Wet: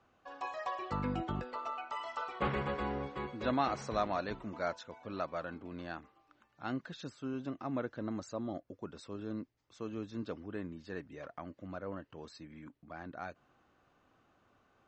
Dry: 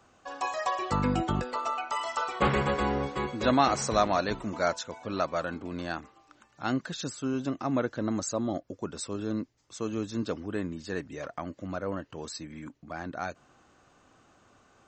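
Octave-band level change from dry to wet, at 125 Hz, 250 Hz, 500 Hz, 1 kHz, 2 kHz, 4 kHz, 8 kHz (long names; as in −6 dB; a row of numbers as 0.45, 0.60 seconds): −8.5, −8.5, −8.5, −8.5, −8.5, −11.5, −19.5 decibels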